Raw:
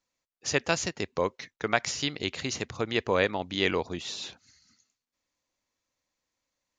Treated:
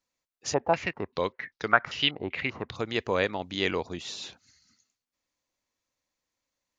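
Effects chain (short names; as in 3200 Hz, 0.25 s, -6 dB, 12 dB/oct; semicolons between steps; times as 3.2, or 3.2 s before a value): 0.54–2.76 stepped low-pass 5.1 Hz 830–4900 Hz; gain -1.5 dB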